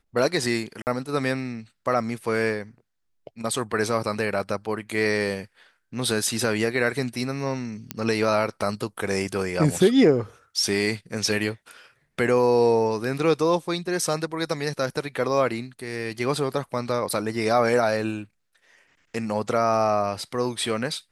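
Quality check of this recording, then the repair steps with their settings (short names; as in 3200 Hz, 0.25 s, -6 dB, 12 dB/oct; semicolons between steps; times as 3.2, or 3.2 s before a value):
0.82–0.87 gap 49 ms
7.91 pop -10 dBFS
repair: de-click; interpolate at 0.82, 49 ms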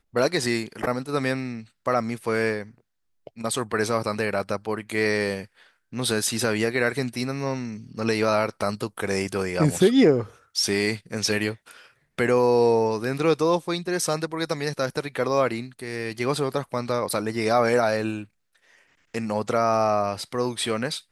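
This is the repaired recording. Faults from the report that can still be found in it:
none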